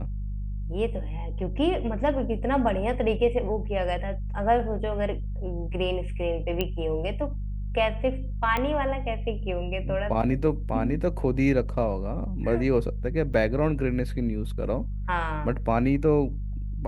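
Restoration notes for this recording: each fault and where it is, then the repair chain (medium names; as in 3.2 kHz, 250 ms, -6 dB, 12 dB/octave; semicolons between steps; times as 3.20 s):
hum 50 Hz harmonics 4 -31 dBFS
6.61 s: pop -13 dBFS
8.57 s: pop -14 dBFS
13.33–13.34 s: dropout 6.7 ms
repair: de-click; de-hum 50 Hz, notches 4; interpolate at 13.33 s, 6.7 ms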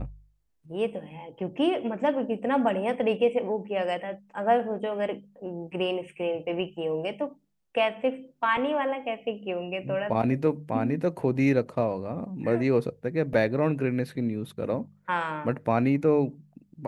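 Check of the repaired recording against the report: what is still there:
nothing left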